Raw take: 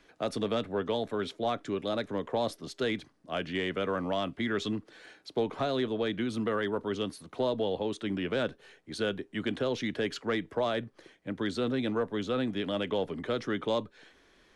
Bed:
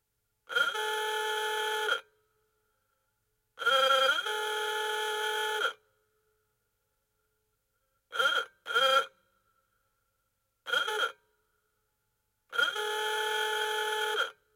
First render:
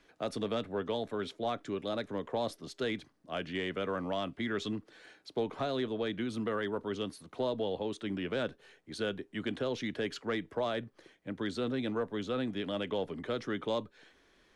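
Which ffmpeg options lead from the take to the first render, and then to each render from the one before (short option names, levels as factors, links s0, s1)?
-af "volume=0.668"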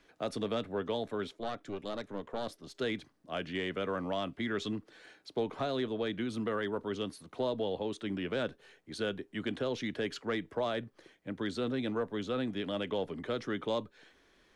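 -filter_complex "[0:a]asettb=1/sr,asplit=3[s0][s1][s2];[s0]atrim=end=1.274[s3];[s1]atrim=start=1.27:end=2.75,asetpts=PTS-STARTPTS,afade=t=in:d=0.004:c=qsin,afade=t=out:st=1.476:d=0.004:c=qsin,aeval=exprs='(tanh(25.1*val(0)+0.7)-tanh(0.7))/25.1':c=same[s4];[s2]atrim=start=2.746[s5];[s3][s4]acrossfade=d=0.004:c1=hsin:c2=qsin[s6];[s6][s5]acrossfade=d=0.004:c1=qsin:c2=hsin"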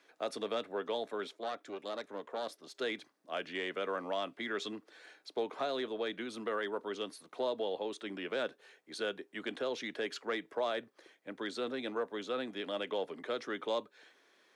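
-af "highpass=380,bandreject=f=3000:w=26"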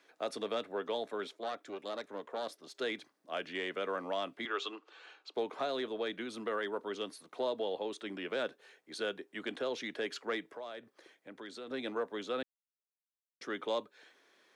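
-filter_complex "[0:a]asettb=1/sr,asplit=3[s0][s1][s2];[s0]atrim=end=4.454[s3];[s1]atrim=start=4.45:end=5.34,asetpts=PTS-STARTPTS,afade=t=in:d=0.004:c=qsin,afade=t=out:st=0.886:d=0.004:c=qsin,highpass=f=340:w=0.5412,highpass=f=340:w=1.3066,equalizer=f=610:t=q:w=4:g=-4,equalizer=f=860:t=q:w=4:g=4,equalizer=f=1200:t=q:w=4:g=9,equalizer=f=1900:t=q:w=4:g=-6,equalizer=f=2800:t=q:w=4:g=9,equalizer=f=5400:t=q:w=4:g=-5,lowpass=f=6800:w=0.5412,lowpass=f=6800:w=1.3066[s4];[s2]atrim=start=5.336[s5];[s3][s4]acrossfade=d=0.004:c1=hsin:c2=qsin[s6];[s6][s5]acrossfade=d=0.004:c1=qsin:c2=hsin,asettb=1/sr,asplit=3[s7][s8][s9];[s7]atrim=end=10.484[s10];[s8]atrim=start=10.48:end=11.71,asetpts=PTS-STARTPTS,afade=t=in:d=0.004:c=qsin,afade=t=out:st=1.226:d=0.004:c=qsin,acompressor=threshold=0.00355:ratio=2:attack=3.2:release=140:knee=1:detection=peak[s11];[s9]atrim=start=11.706[s12];[s10][s11]acrossfade=d=0.004:c1=hsin:c2=qsin[s13];[s13][s12]acrossfade=d=0.004:c1=qsin:c2=hsin,asplit=3[s14][s15][s16];[s14]atrim=end=12.43,asetpts=PTS-STARTPTS,afade=t=out:st=12.426:d=0.004:c=hsin[s17];[s15]atrim=start=12.43:end=13.41,asetpts=PTS-STARTPTS,volume=0[s18];[s16]atrim=start=13.41,asetpts=PTS-STARTPTS,afade=t=in:d=0.004:c=hsin[s19];[s17][s18][s19]concat=n=3:v=0:a=1"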